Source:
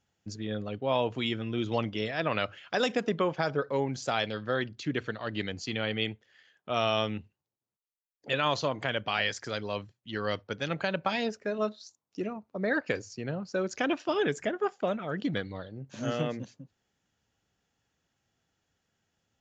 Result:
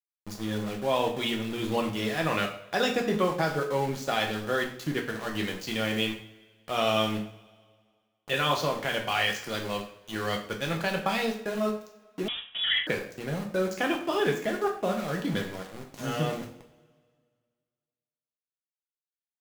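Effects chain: small samples zeroed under -37.5 dBFS; two-slope reverb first 0.49 s, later 1.9 s, from -21 dB, DRR 1 dB; 12.28–12.87 s: frequency inversion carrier 3.6 kHz

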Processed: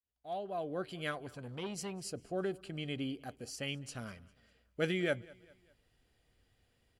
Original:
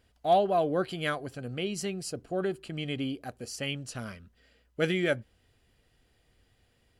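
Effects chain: fade-in on the opening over 1.29 s; feedback delay 200 ms, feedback 45%, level -23 dB; 1.11–2.04 s: transformer saturation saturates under 720 Hz; trim -5.5 dB

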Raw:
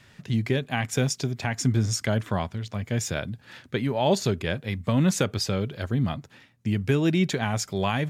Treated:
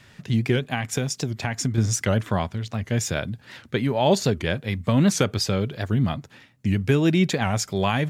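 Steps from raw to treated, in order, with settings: 0.72–1.78 s: compression, threshold -24 dBFS, peak gain reduction 7 dB; warped record 78 rpm, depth 160 cents; trim +3 dB

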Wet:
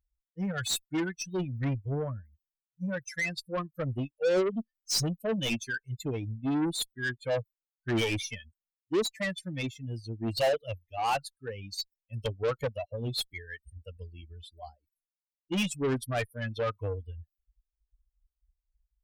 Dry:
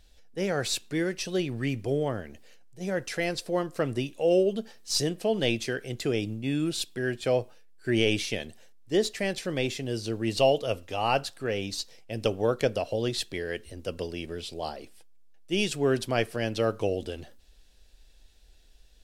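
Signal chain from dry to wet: expander on every frequency bin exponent 3; saturation -28.5 dBFS, distortion -9 dB; Chebyshev shaper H 5 -18 dB, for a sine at -28.5 dBFS; trim +6.5 dB

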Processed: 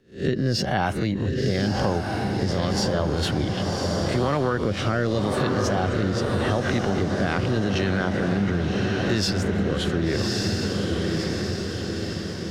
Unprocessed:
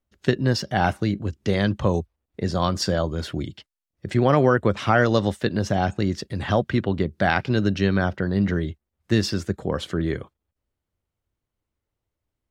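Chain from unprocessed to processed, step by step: reverse spectral sustain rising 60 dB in 0.31 s; wow and flutter 27 cents; transient shaper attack -4 dB, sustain +6 dB; rotary cabinet horn 0.85 Hz; on a send: echo that smears into a reverb 1132 ms, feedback 53%, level -5 dB; on the sum: compression 6:1, threshold -25 dBFS, peak gain reduction 12 dB; trim +5.5 dB

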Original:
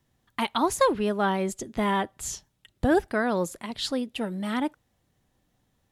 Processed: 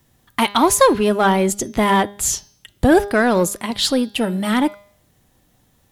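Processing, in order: treble shelf 8.9 kHz +9 dB; de-hum 202.7 Hz, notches 31; in parallel at -6 dB: hard clipper -26 dBFS, distortion -6 dB; on the sum: trim +7.5 dB

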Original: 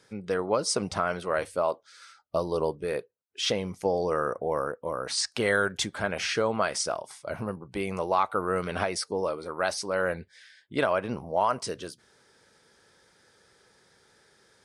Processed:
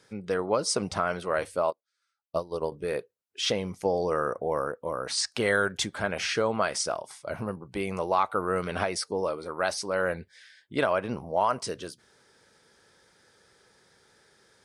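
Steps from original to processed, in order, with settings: 1.70–2.72 s: upward expansion 2.5:1, over -42 dBFS

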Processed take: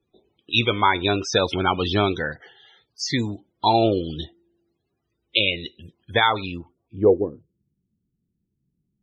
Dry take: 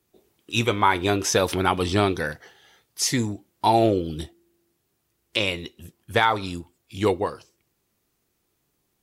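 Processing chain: loudest bins only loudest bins 64; low-pass sweep 3.8 kHz -> 190 Hz, 6.35–7.46 s

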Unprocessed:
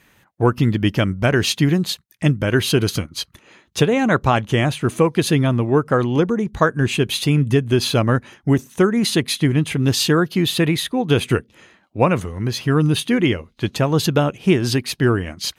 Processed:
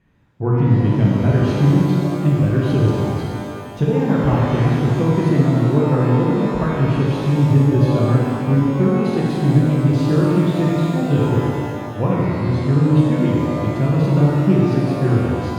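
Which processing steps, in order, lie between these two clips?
low-pass 1.4 kHz 6 dB/octave; bass shelf 310 Hz +12 dB; pitch-shifted reverb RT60 2.2 s, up +12 st, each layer -8 dB, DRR -4.5 dB; trim -12 dB

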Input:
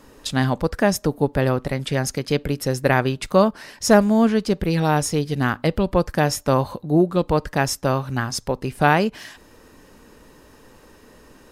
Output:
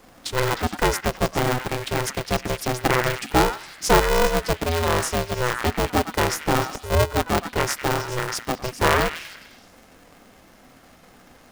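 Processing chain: repeats whose band climbs or falls 103 ms, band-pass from 1.5 kHz, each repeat 0.7 oct, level -2.5 dB; polarity switched at an audio rate 250 Hz; trim -2.5 dB

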